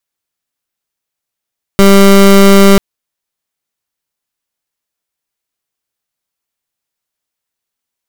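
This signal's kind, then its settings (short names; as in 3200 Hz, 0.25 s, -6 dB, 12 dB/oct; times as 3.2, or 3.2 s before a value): pulse 197 Hz, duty 23% -3.5 dBFS 0.99 s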